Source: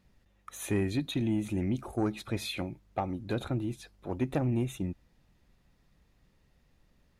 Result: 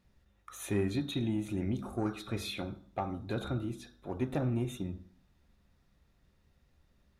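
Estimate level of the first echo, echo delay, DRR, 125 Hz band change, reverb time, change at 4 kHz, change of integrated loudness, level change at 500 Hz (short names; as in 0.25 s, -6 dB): none, none, 5.0 dB, -2.5 dB, 0.45 s, -2.0 dB, -2.5 dB, -2.0 dB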